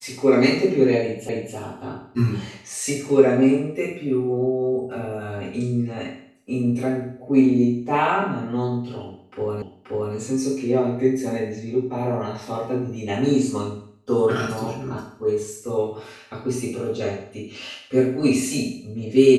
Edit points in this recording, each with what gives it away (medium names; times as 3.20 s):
1.29 s: repeat of the last 0.27 s
9.62 s: repeat of the last 0.53 s